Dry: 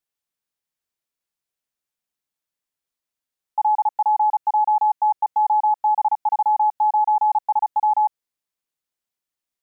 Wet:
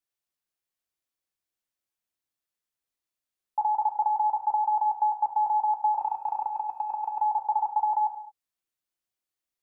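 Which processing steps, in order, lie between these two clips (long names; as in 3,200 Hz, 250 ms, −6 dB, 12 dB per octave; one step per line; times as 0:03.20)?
0:05.99–0:07.20: compressor whose output falls as the input rises −22 dBFS, ratio −0.5
reverb whose tail is shaped and stops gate 250 ms falling, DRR 4 dB
level −4.5 dB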